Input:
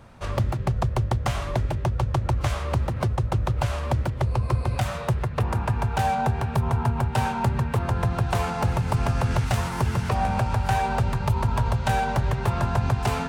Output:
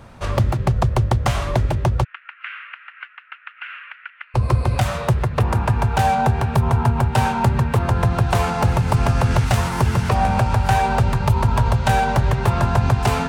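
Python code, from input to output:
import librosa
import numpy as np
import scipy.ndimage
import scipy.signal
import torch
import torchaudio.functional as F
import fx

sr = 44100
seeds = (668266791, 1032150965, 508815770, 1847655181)

y = fx.cheby1_bandpass(x, sr, low_hz=1400.0, high_hz=2800.0, order=3, at=(2.03, 4.34), fade=0.02)
y = y * librosa.db_to_amplitude(6.0)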